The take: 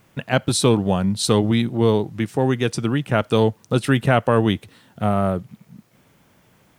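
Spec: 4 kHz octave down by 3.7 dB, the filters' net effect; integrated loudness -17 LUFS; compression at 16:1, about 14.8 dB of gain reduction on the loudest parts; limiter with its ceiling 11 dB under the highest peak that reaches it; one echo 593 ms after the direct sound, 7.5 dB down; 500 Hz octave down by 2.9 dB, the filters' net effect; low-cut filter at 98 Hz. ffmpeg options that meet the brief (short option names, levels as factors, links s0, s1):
-af "highpass=98,equalizer=f=500:t=o:g=-3.5,equalizer=f=4000:t=o:g=-4.5,acompressor=threshold=0.0398:ratio=16,alimiter=level_in=1.19:limit=0.0631:level=0:latency=1,volume=0.841,aecho=1:1:593:0.422,volume=9.44"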